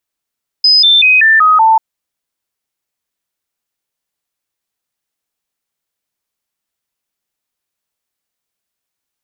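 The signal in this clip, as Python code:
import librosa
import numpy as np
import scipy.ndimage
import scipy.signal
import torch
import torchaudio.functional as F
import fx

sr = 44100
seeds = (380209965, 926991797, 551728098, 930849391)

y = fx.stepped_sweep(sr, from_hz=5030.0, direction='down', per_octave=2, tones=6, dwell_s=0.19, gap_s=0.0, level_db=-4.5)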